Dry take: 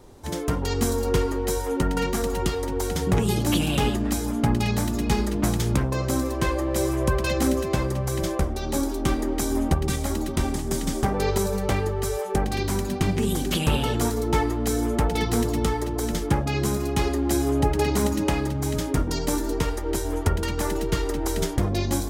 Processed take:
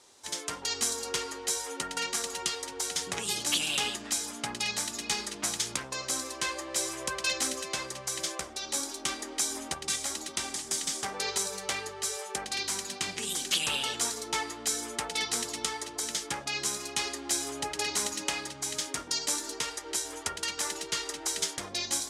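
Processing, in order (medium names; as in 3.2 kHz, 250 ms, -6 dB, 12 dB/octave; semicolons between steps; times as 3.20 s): frequency weighting ITU-R 468; trim -7.5 dB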